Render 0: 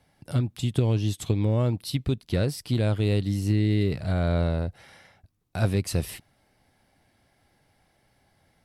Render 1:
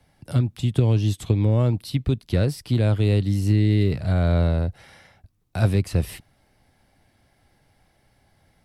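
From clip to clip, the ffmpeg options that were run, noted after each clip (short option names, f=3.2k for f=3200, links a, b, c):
-filter_complex "[0:a]lowshelf=f=90:g=7,acrossover=split=180|1200|3100[a][b][c][d];[d]alimiter=level_in=7.5dB:limit=-24dB:level=0:latency=1:release=350,volume=-7.5dB[e];[a][b][c][e]amix=inputs=4:normalize=0,volume=2dB"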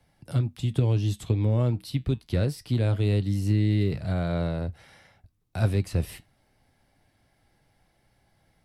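-af "flanger=delay=5.8:depth=2.2:regen=-77:speed=0.25:shape=sinusoidal"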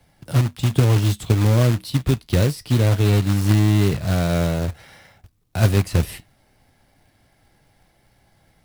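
-af "acrusher=bits=3:mode=log:mix=0:aa=0.000001,volume=7dB"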